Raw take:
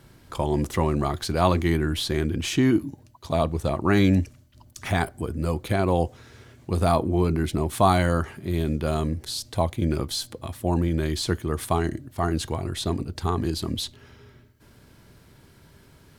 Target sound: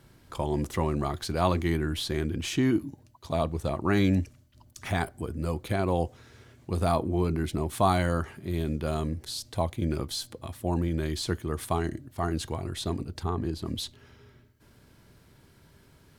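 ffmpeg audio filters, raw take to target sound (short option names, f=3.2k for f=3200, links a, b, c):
-filter_complex "[0:a]asettb=1/sr,asplit=3[a][b][c];[a]atrim=end=13.234[d];[b]atrim=start=13.23:end=13.66,asetpts=PTS-STARTPTS,afade=t=in:d=0.004:c=qsin,afade=t=out:st=0.426:d=0.004:c=qsin,highshelf=f=2.4k:g=-9.5[e];[c]atrim=start=13.656[f];[d][e]acrossfade=d=0.004:c1=hsin:c2=qsin[g];[g][f]acrossfade=d=0.004:c1=qsin:c2=hsin,volume=-4.5dB"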